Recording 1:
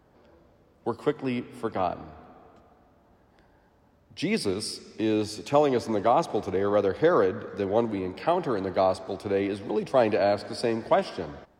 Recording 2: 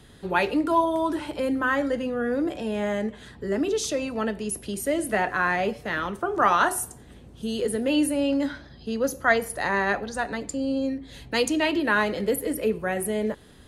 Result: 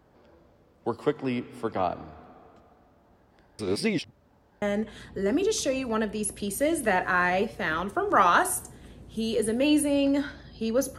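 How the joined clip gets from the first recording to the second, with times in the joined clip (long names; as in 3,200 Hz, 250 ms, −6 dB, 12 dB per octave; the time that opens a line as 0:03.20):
recording 1
0:03.59–0:04.62: reverse
0:04.62: continue with recording 2 from 0:02.88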